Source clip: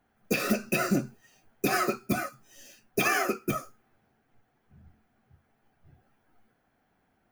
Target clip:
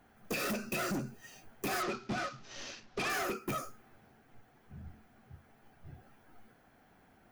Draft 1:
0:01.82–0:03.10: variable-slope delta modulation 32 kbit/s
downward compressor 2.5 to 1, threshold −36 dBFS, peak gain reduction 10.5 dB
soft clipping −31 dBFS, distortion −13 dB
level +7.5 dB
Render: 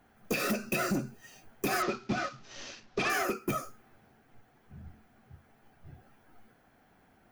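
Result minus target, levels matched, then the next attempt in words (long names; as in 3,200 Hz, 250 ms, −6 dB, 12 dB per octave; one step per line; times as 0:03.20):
soft clipping: distortion −7 dB
0:01.82–0:03.10: variable-slope delta modulation 32 kbit/s
downward compressor 2.5 to 1, threshold −36 dBFS, peak gain reduction 10.5 dB
soft clipping −39 dBFS, distortion −7 dB
level +7.5 dB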